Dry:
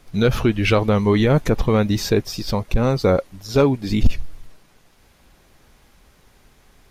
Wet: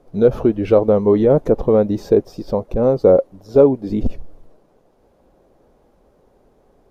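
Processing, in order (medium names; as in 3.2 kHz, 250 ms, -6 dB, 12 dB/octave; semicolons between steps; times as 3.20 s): FFT filter 110 Hz 0 dB, 530 Hz +14 dB, 2.1 kHz -10 dB; trim -6 dB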